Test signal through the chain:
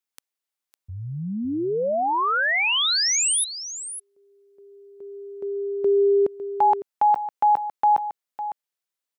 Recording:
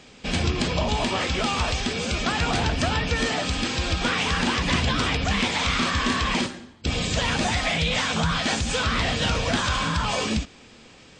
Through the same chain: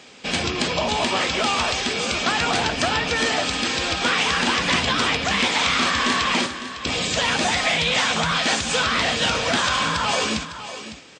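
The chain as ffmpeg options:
-af "highpass=f=370:p=1,aecho=1:1:555:0.251,volume=1.68"

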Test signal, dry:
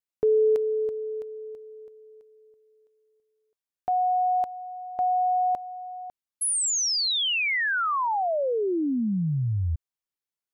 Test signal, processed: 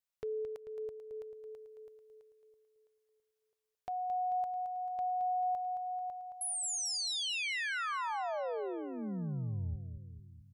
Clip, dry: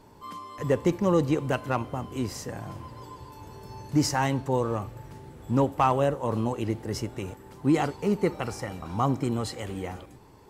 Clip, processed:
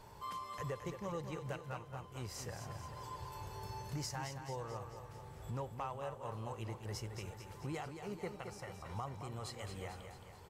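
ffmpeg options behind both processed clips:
-filter_complex "[0:a]equalizer=f=270:t=o:w=0.91:g=-14.5,acompressor=threshold=0.0158:ratio=6:attack=0.62:release=894:knee=6:detection=rms,asplit=2[s0][s1];[s1]aecho=0:1:220|440|660|880|1100|1320|1540:0.398|0.223|0.125|0.0699|0.0392|0.0219|0.0123[s2];[s0][s2]amix=inputs=2:normalize=0"

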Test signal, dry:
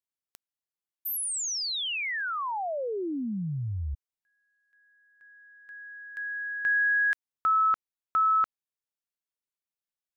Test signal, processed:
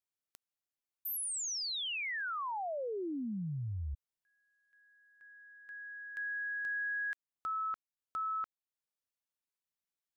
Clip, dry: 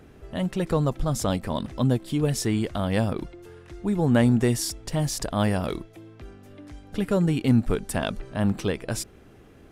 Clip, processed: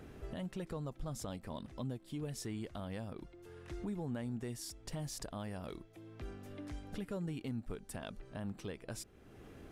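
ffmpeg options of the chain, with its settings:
-af "acompressor=threshold=0.0224:ratio=5:attack=0.24:release=978:knee=1:detection=peak,volume=0.75"

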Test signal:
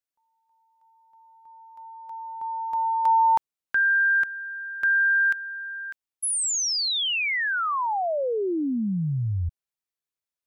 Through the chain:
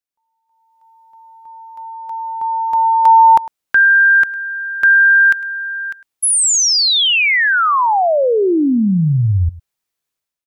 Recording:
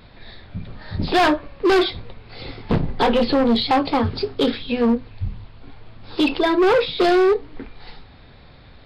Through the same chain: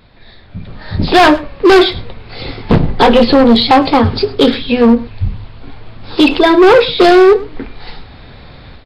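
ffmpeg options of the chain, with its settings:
-af "dynaudnorm=f=460:g=3:m=3.98,aecho=1:1:104:0.112"

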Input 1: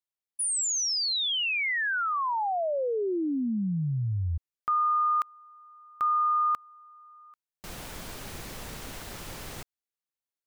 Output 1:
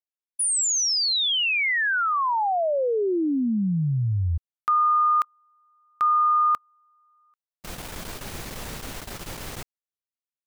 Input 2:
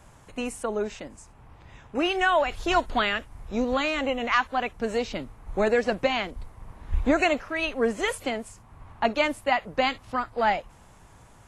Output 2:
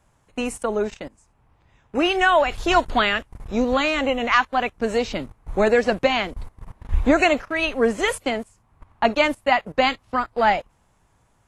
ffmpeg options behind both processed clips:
-af "agate=range=0.178:threshold=0.00794:ratio=16:release=27:detection=rms,volume=1.78"

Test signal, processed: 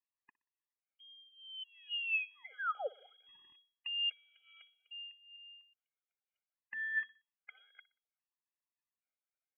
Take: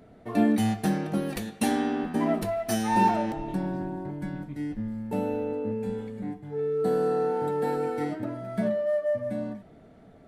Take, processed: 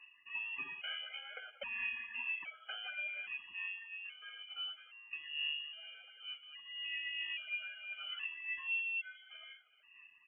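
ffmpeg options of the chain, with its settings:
-filter_complex "[0:a]highpass=740,highshelf=f=2400:g=-8.5,alimiter=level_in=1.5:limit=0.0631:level=0:latency=1:release=309,volume=0.668,acompressor=threshold=0.0126:ratio=2.5,aphaser=in_gain=1:out_gain=1:delay=1.8:decay=0.53:speed=1.1:type=sinusoidal,aeval=exprs='0.0794*(cos(1*acos(clip(val(0)/0.0794,-1,1)))-cos(1*PI/2))+0.00355*(cos(4*acos(clip(val(0)/0.0794,-1,1)))-cos(4*PI/2))+0.00316*(cos(6*acos(clip(val(0)/0.0794,-1,1)))-cos(6*PI/2))':c=same,flanger=delay=0.4:depth=3.4:regen=-36:speed=0.36:shape=sinusoidal,asplit=2[s0][s1];[s1]aecho=0:1:61|122|183:0.0841|0.0328|0.0128[s2];[s0][s2]amix=inputs=2:normalize=0,lowpass=f=2800:t=q:w=0.5098,lowpass=f=2800:t=q:w=0.6013,lowpass=f=2800:t=q:w=0.9,lowpass=f=2800:t=q:w=2.563,afreqshift=-3300,afftfilt=real='re*gt(sin(2*PI*0.61*pts/sr)*(1-2*mod(floor(b*sr/1024/410),2)),0)':imag='im*gt(sin(2*PI*0.61*pts/sr)*(1-2*mod(floor(b*sr/1024/410),2)),0)':win_size=1024:overlap=0.75,volume=1.5"

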